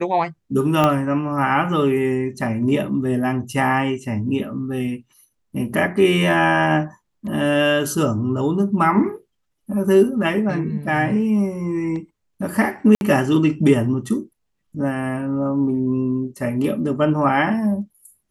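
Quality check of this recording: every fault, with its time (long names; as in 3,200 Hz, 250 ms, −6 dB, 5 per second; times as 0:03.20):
0:00.84: click −5 dBFS
0:12.95–0:13.01: drop-out 61 ms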